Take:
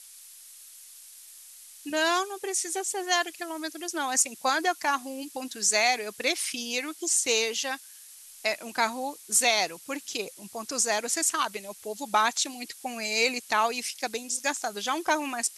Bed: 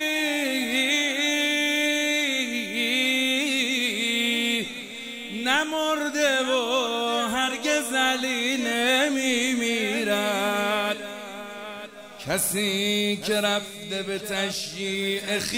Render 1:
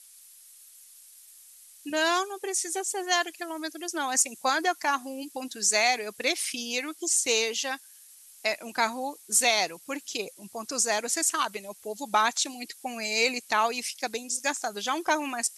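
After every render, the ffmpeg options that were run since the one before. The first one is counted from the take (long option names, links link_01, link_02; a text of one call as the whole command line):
ffmpeg -i in.wav -af "afftdn=noise_reduction=6:noise_floor=-49" out.wav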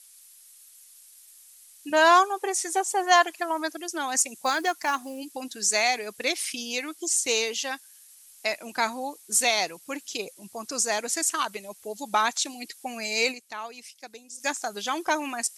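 ffmpeg -i in.wav -filter_complex "[0:a]asettb=1/sr,asplit=3[link_01][link_02][link_03];[link_01]atrim=end=1.924[link_04];[link_02]atrim=start=1.92:end=3.77,asetpts=PTS-STARTPTS,afade=type=in:duration=0.004:curve=qsin,afade=type=out:start_time=1.846:duration=0.004:curve=qsin,equalizer=frequency=940:width=0.85:gain=11.5[link_05];[link_03]atrim=start=3.766[link_06];[link_04][link_05]acrossfade=duration=0.004:curve1=hsin:curve2=qsin[link_07];[link_07][link_06]acrossfade=duration=0.004:curve1=qsin:curve2=hsin,asplit=3[link_08][link_09][link_10];[link_08]afade=type=out:start_time=4.42:duration=0.02[link_11];[link_09]acrusher=bits=6:mode=log:mix=0:aa=0.000001,afade=type=in:start_time=4.42:duration=0.02,afade=type=out:start_time=5.18:duration=0.02[link_12];[link_10]afade=type=in:start_time=5.18:duration=0.02[link_13];[link_11][link_12][link_13]amix=inputs=3:normalize=0,asplit=3[link_14][link_15][link_16];[link_14]atrim=end=13.59,asetpts=PTS-STARTPTS,afade=type=out:start_time=13.31:duration=0.28:curve=exp:silence=0.251189[link_17];[link_15]atrim=start=13.59:end=14.14,asetpts=PTS-STARTPTS,volume=-12dB[link_18];[link_16]atrim=start=14.14,asetpts=PTS-STARTPTS,afade=type=in:duration=0.28:curve=exp:silence=0.251189[link_19];[link_17][link_18][link_19]concat=n=3:v=0:a=1" out.wav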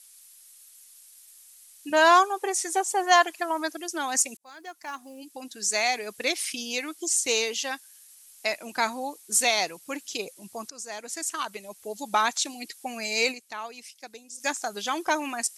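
ffmpeg -i in.wav -filter_complex "[0:a]asplit=3[link_01][link_02][link_03];[link_01]atrim=end=4.37,asetpts=PTS-STARTPTS,afade=type=out:start_time=4.366:duration=0.004:curve=hsin[link_04];[link_02]atrim=start=4.37:end=10.7,asetpts=PTS-STARTPTS,afade=type=in:duration=1.77,afade=type=out:start_time=6.326:duration=0.004:curve=hsin:silence=0.141254[link_05];[link_03]atrim=start=10.7,asetpts=PTS-STARTPTS,afade=type=in:duration=1.22:silence=0.141254[link_06];[link_04][link_05][link_06]concat=n=3:v=0:a=1" out.wav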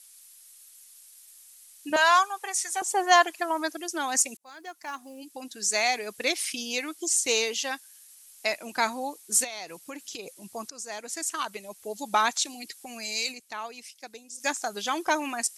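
ffmpeg -i in.wav -filter_complex "[0:a]asettb=1/sr,asplit=3[link_01][link_02][link_03];[link_01]atrim=end=1.964[link_04];[link_02]atrim=start=1.96:end=2.82,asetpts=PTS-STARTPTS,afade=type=in:duration=0.004:curve=qsin,afade=type=out:start_time=0.856:duration=0.004:curve=qsin,highpass=940[link_05];[link_03]atrim=start=2.816[link_06];[link_04][link_05]acrossfade=duration=0.004:curve1=hsin:curve2=qsin[link_07];[link_07][link_06]acrossfade=duration=0.004:curve1=qsin:curve2=hsin,asplit=3[link_08][link_09][link_10];[link_08]afade=type=out:start_time=9.43:duration=0.02[link_11];[link_09]acompressor=threshold=-34dB:ratio=6:attack=3.2:release=140:knee=1:detection=peak,afade=type=in:start_time=9.43:duration=0.02,afade=type=out:start_time=10.39:duration=0.02[link_12];[link_10]afade=type=in:start_time=10.39:duration=0.02[link_13];[link_11][link_12][link_13]amix=inputs=3:normalize=0,asettb=1/sr,asplit=3[link_14][link_15][link_16];[link_14]atrim=end=12.444[link_17];[link_15]atrim=start=12.44:end=13.4,asetpts=PTS-STARTPTS,afade=type=in:duration=0.004:curve=qsin,afade=type=out:start_time=0.956:duration=0.004:curve=qsin,acrossover=split=160|3000[link_18][link_19][link_20];[link_19]acompressor=threshold=-39dB:ratio=6:attack=3.2:release=140:knee=2.83:detection=peak[link_21];[link_18][link_21][link_20]amix=inputs=3:normalize=0[link_22];[link_16]atrim=start=13.396[link_23];[link_17][link_22]acrossfade=duration=0.004:curve1=hsin:curve2=qsin[link_24];[link_24][link_23]acrossfade=duration=0.004:curve1=qsin:curve2=hsin" out.wav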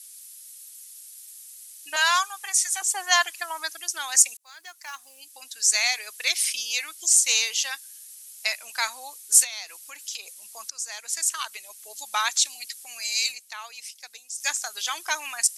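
ffmpeg -i in.wav -af "highpass=1200,highshelf=frequency=3000:gain=8" out.wav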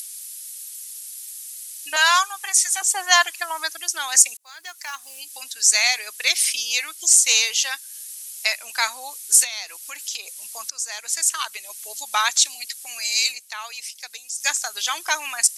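ffmpeg -i in.wav -filter_complex "[0:a]acrossover=split=1300[link_01][link_02];[link_02]acompressor=mode=upward:threshold=-34dB:ratio=2.5[link_03];[link_01][link_03]amix=inputs=2:normalize=0,alimiter=level_in=4.5dB:limit=-1dB:release=50:level=0:latency=1" out.wav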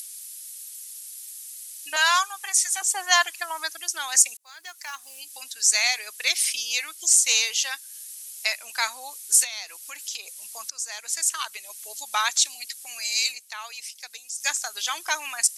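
ffmpeg -i in.wav -af "volume=-3.5dB" out.wav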